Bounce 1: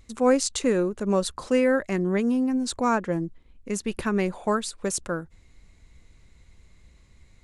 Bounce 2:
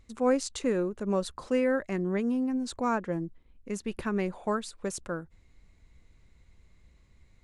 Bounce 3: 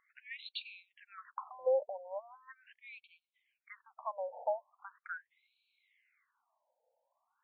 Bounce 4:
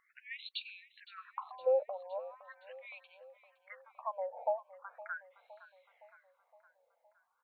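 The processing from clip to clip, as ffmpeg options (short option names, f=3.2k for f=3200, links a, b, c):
-af "highshelf=f=4.1k:g=-6,volume=-5dB"
-af "afftfilt=real='re*between(b*sr/1024,660*pow(3200/660,0.5+0.5*sin(2*PI*0.4*pts/sr))/1.41,660*pow(3200/660,0.5+0.5*sin(2*PI*0.4*pts/sr))*1.41)':imag='im*between(b*sr/1024,660*pow(3200/660,0.5+0.5*sin(2*PI*0.4*pts/sr))/1.41,660*pow(3200/660,0.5+0.5*sin(2*PI*0.4*pts/sr))*1.41)':win_size=1024:overlap=0.75,volume=1dB"
-af "aecho=1:1:514|1028|1542|2056|2570:0.126|0.0718|0.0409|0.0233|0.0133,volume=1dB"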